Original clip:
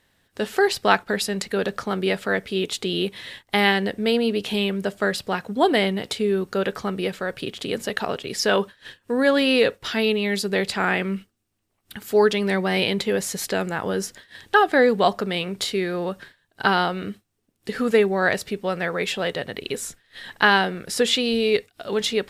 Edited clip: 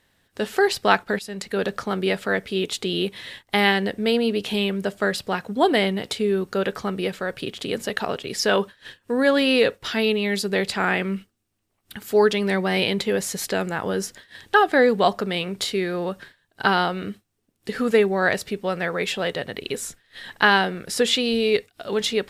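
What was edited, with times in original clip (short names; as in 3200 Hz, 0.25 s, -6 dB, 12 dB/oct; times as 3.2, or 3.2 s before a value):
1.19–1.61 fade in, from -14 dB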